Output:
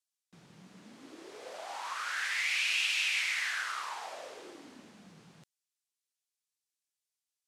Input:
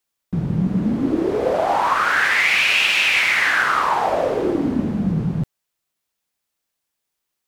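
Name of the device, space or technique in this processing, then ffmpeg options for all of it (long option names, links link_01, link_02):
piezo pickup straight into a mixer: -af "lowpass=7900,aderivative,volume=-5dB"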